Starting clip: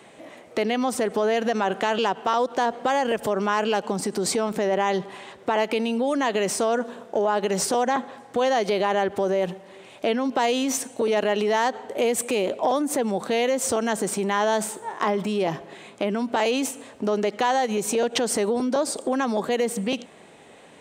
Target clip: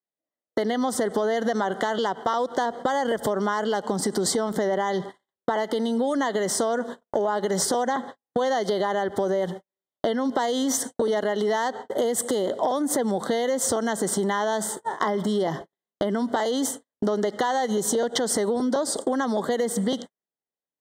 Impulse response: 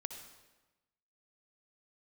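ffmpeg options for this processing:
-af "agate=range=-55dB:threshold=-34dB:ratio=16:detection=peak,acompressor=threshold=-25dB:ratio=6,asuperstop=centerf=2500:order=12:qfactor=2.8,volume=4.5dB"

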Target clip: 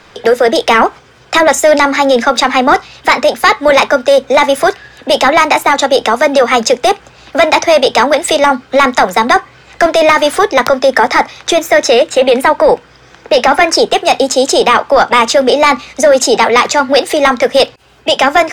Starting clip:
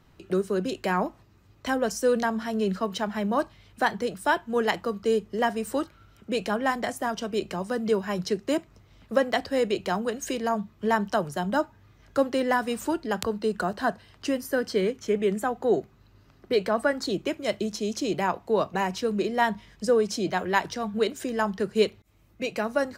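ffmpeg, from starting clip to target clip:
ffmpeg -i in.wav -filter_complex "[0:a]acrossover=split=360 5800:gain=0.178 1 0.2[link_01][link_02][link_03];[link_01][link_02][link_03]amix=inputs=3:normalize=0,apsyclip=26.5dB,asetrate=54684,aresample=44100,volume=-2dB" out.wav

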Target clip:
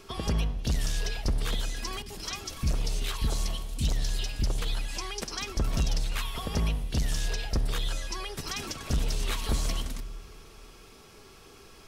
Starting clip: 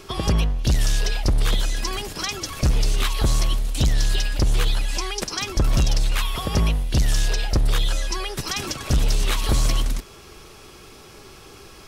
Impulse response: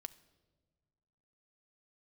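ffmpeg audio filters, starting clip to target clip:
-filter_complex "[0:a]asettb=1/sr,asplit=3[link_01][link_02][link_03];[link_01]atrim=end=2.024[link_04];[link_02]atrim=start=2.02:end=4.62,asetpts=PTS-STARTPTS,afade=type=in:duration=0.004:curve=qsin,afade=type=out:start_time=2.596:duration=0.004:curve=qsin,acrossover=split=330|1600[link_05][link_06][link_07];[link_07]adelay=40[link_08];[link_06]adelay=80[link_09];[link_05][link_09][link_08]amix=inputs=3:normalize=0,atrim=end_sample=114660[link_10];[link_03]atrim=start=4.616[link_11];[link_04][link_10]acrossfade=duration=0.004:curve1=hsin:curve2=qsin[link_12];[link_12][link_11]acrossfade=duration=0.004:curve1=qsin:curve2=hsin[link_13];[1:a]atrim=start_sample=2205[link_14];[link_13][link_14]afir=irnorm=-1:irlink=0,volume=-3dB"

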